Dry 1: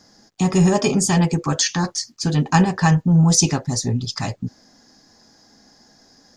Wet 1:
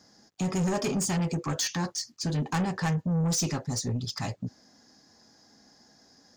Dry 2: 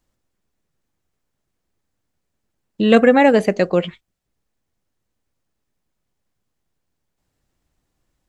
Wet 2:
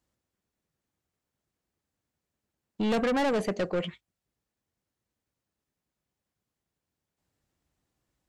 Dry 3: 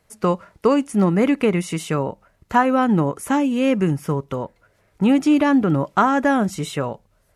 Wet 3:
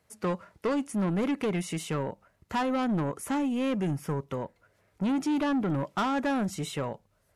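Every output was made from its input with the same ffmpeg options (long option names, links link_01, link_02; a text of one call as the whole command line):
ffmpeg -i in.wav -af "highpass=54,asoftclip=type=tanh:threshold=-17.5dB,volume=-6dB" out.wav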